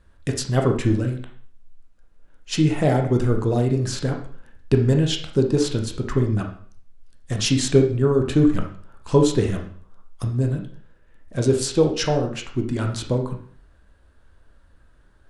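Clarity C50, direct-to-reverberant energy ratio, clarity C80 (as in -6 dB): 7.0 dB, 2.5 dB, 12.0 dB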